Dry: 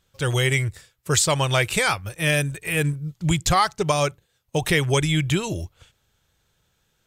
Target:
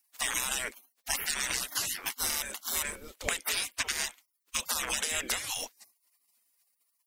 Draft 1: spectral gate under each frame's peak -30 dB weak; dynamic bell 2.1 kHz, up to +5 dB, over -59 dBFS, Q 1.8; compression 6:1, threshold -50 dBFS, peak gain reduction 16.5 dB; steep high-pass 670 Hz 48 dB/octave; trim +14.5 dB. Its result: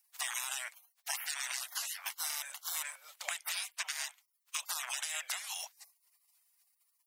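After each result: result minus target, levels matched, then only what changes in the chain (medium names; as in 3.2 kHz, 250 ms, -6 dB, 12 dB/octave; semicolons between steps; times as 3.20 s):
500 Hz band -7.5 dB; compression: peak gain reduction +6 dB
remove: steep high-pass 670 Hz 48 dB/octave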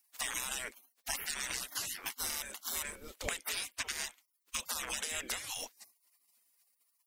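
compression: peak gain reduction +6 dB
change: compression 6:1, threshold -42.5 dBFS, peak gain reduction 10 dB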